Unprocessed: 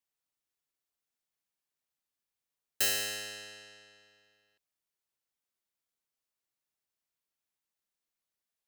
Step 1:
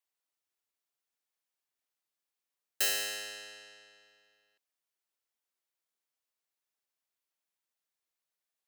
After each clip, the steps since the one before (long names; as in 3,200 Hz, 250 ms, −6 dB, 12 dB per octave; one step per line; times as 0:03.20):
bass and treble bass −12 dB, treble −1 dB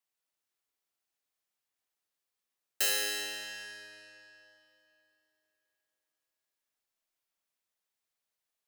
comb and all-pass reverb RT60 3.1 s, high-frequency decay 0.9×, pre-delay 5 ms, DRR 3 dB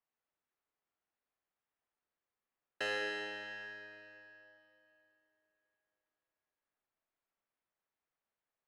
low-pass filter 1,800 Hz 12 dB per octave
level +2 dB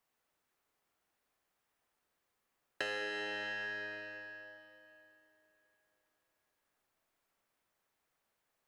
downward compressor 5 to 1, threshold −46 dBFS, peak gain reduction 12 dB
level +9.5 dB